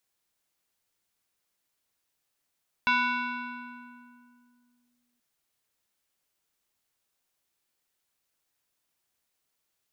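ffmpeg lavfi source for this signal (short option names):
-f lavfi -i "aevalsrc='0.106*pow(10,-3*t/2.34)*sin(2*PI*243*t+2.1*clip(1-t/2.14,0,1)*sin(2*PI*5.09*243*t))':d=2.33:s=44100"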